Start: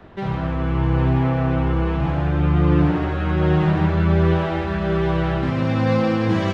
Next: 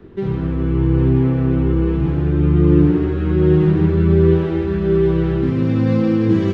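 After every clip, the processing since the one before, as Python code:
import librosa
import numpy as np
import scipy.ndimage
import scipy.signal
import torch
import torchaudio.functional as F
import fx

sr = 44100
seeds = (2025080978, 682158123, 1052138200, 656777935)

y = fx.low_shelf_res(x, sr, hz=510.0, db=7.5, q=3.0)
y = y * librosa.db_to_amplitude(-5.0)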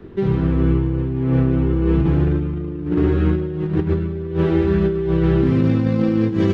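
y = fx.over_compress(x, sr, threshold_db=-17.0, ratio=-0.5)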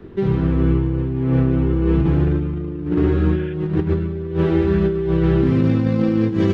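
y = fx.spec_repair(x, sr, seeds[0], start_s=3.22, length_s=0.29, low_hz=1400.0, high_hz=3500.0, source='before')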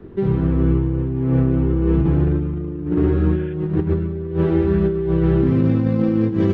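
y = fx.high_shelf(x, sr, hz=2000.0, db=-9.0)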